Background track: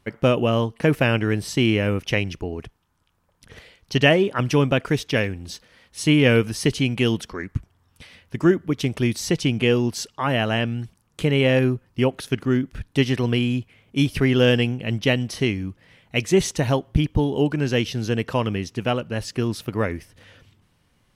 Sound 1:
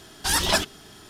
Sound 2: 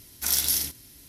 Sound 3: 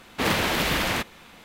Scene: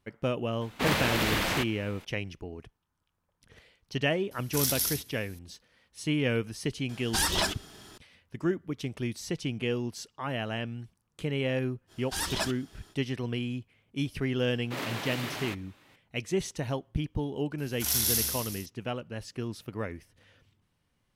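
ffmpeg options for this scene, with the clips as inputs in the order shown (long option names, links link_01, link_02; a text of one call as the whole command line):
ffmpeg -i bed.wav -i cue0.wav -i cue1.wav -i cue2.wav -filter_complex "[3:a]asplit=2[link_01][link_02];[2:a]asplit=2[link_03][link_04];[1:a]asplit=2[link_05][link_06];[0:a]volume=-11.5dB[link_07];[link_05]alimiter=limit=-12.5dB:level=0:latency=1:release=133[link_08];[link_02]afreqshift=86[link_09];[link_04]aecho=1:1:40|84|132.4|185.6|244.2|308.6|379.5|457.4:0.794|0.631|0.501|0.398|0.316|0.251|0.2|0.158[link_10];[link_01]atrim=end=1.44,asetpts=PTS-STARTPTS,volume=-4dB,afade=type=in:duration=0.004:curve=hsin,afade=type=out:start_time=1.436:duration=0.004:curve=hsin,adelay=610[link_11];[link_03]atrim=end=1.08,asetpts=PTS-STARTPTS,volume=-5dB,afade=type=in:duration=0.004:curve=hsin,afade=type=out:start_time=1.076:duration=0.004:curve=hsin,adelay=4310[link_12];[link_08]atrim=end=1.09,asetpts=PTS-STARTPTS,volume=-3dB,afade=type=in:duration=0.004:curve=hsin,afade=type=out:start_time=1.086:duration=0.004:curve=hsin,adelay=6890[link_13];[link_06]atrim=end=1.09,asetpts=PTS-STARTPTS,volume=-10dB,afade=type=in:duration=0.05,afade=type=out:start_time=1.04:duration=0.05,adelay=11870[link_14];[link_09]atrim=end=1.44,asetpts=PTS-STARTPTS,volume=-12.5dB,afade=type=in:duration=0.004:curve=hsin,afade=type=out:start_time=1.436:duration=0.004:curve=hsin,adelay=14520[link_15];[link_10]atrim=end=1.08,asetpts=PTS-STARTPTS,volume=-6.5dB,afade=type=in:duration=0.004:curve=hsin,afade=type=out:start_time=1.076:duration=0.004:curve=hsin,adelay=17580[link_16];[link_07][link_11][link_12][link_13][link_14][link_15][link_16]amix=inputs=7:normalize=0" out.wav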